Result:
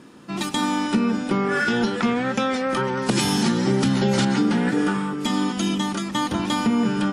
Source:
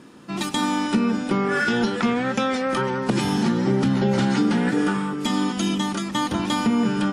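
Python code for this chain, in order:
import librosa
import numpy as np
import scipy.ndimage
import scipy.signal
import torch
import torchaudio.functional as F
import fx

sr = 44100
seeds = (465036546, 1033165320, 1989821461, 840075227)

y = fx.high_shelf(x, sr, hz=3200.0, db=10.5, at=(2.97, 4.25))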